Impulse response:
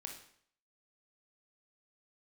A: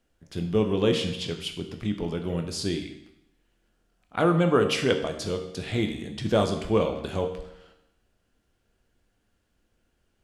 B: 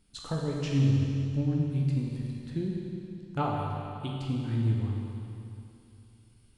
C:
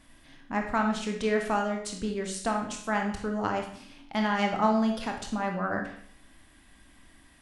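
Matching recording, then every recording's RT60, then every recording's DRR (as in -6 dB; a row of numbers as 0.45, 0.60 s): C; 0.85, 2.8, 0.60 s; 5.0, -3.0, 2.0 dB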